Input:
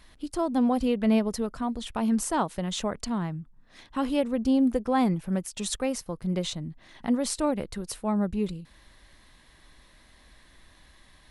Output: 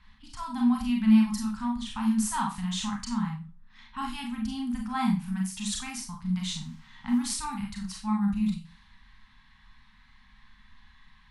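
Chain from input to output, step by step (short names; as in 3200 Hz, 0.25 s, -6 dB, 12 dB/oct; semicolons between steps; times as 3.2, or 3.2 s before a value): 6.6–7.17 added noise pink -57 dBFS; low-pass opened by the level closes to 3000 Hz, open at -25 dBFS; elliptic band-stop 230–880 Hz, stop band 40 dB; Schroeder reverb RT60 0.3 s, combs from 29 ms, DRR 0 dB; gain -2.5 dB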